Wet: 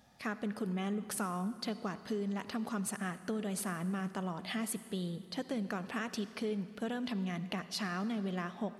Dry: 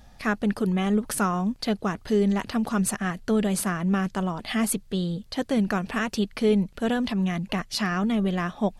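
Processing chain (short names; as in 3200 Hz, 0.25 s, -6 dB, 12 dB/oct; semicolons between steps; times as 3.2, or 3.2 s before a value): HPF 130 Hz 12 dB/oct; compressor, threshold -25 dBFS, peak gain reduction 8.5 dB; on a send: reverb RT60 2.3 s, pre-delay 47 ms, DRR 13 dB; on the sum: gain -8 dB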